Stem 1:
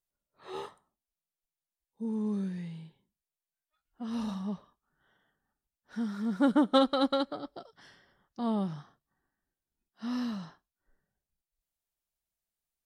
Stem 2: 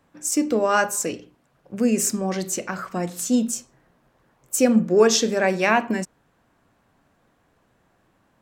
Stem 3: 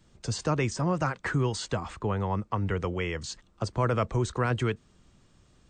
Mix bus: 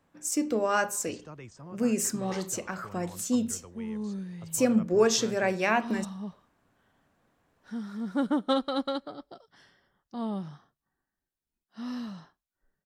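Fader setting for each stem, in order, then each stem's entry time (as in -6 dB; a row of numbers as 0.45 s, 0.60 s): -2.5 dB, -6.5 dB, -18.5 dB; 1.75 s, 0.00 s, 0.80 s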